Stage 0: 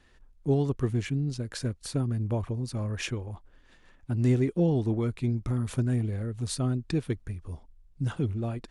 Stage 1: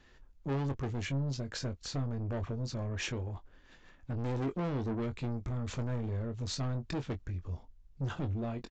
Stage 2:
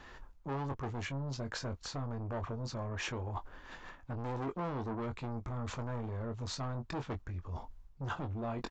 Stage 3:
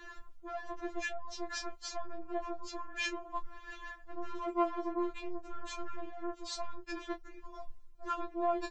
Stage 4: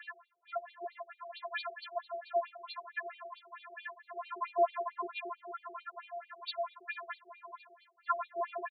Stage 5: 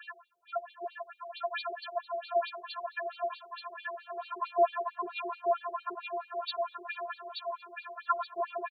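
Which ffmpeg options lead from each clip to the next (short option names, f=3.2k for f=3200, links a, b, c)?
-filter_complex "[0:a]aresample=16000,asoftclip=type=tanh:threshold=-31.5dB,aresample=44100,asplit=2[a][b];[b]adelay=22,volume=-9dB[c];[a][c]amix=inputs=2:normalize=0"
-af "areverse,acompressor=threshold=-45dB:ratio=5,areverse,equalizer=f=1k:w=1:g=10,volume=6dB"
-af "afftfilt=real='re*4*eq(mod(b,16),0)':imag='im*4*eq(mod(b,16),0)':win_size=2048:overlap=0.75,volume=4dB"
-af "aecho=1:1:710|1420|2130:0.168|0.0655|0.0255,afftfilt=real='re*between(b*sr/1024,490*pow(3300/490,0.5+0.5*sin(2*PI*4.5*pts/sr))/1.41,490*pow(3300/490,0.5+0.5*sin(2*PI*4.5*pts/sr))*1.41)':imag='im*between(b*sr/1024,490*pow(3300/490,0.5+0.5*sin(2*PI*4.5*pts/sr))/1.41,490*pow(3300/490,0.5+0.5*sin(2*PI*4.5*pts/sr))*1.41)':win_size=1024:overlap=0.75,volume=8dB"
-filter_complex "[0:a]asuperstop=centerf=2000:order=4:qfactor=3.5,asplit=2[a][b];[b]aecho=0:1:879|1758|2637|3516:0.631|0.215|0.0729|0.0248[c];[a][c]amix=inputs=2:normalize=0,volume=3dB"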